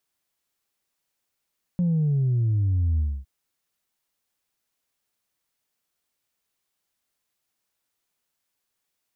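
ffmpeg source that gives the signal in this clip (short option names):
-f lavfi -i "aevalsrc='0.106*clip((1.46-t)/0.26,0,1)*tanh(1.06*sin(2*PI*180*1.46/log(65/180)*(exp(log(65/180)*t/1.46)-1)))/tanh(1.06)':d=1.46:s=44100"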